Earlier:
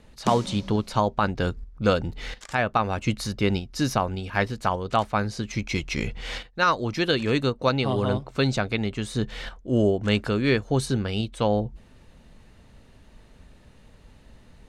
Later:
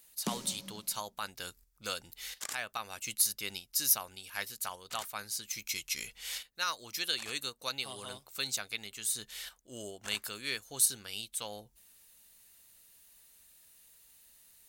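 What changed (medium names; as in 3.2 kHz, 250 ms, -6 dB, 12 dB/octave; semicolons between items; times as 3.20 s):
speech: add pre-emphasis filter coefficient 0.97; first sound -9.0 dB; master: remove distance through air 74 m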